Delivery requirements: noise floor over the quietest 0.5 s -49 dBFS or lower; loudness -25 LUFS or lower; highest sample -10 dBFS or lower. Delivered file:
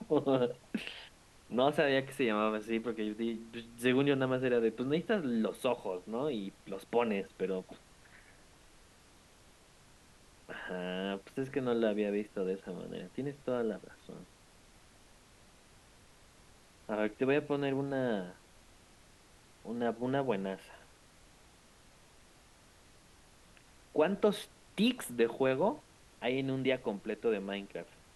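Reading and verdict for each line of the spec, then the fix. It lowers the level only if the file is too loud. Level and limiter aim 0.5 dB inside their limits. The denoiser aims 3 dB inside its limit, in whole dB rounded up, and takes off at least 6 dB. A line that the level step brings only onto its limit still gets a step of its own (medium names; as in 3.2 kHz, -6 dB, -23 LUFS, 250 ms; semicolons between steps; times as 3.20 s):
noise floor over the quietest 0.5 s -61 dBFS: pass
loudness -34.0 LUFS: pass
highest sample -16.0 dBFS: pass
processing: none needed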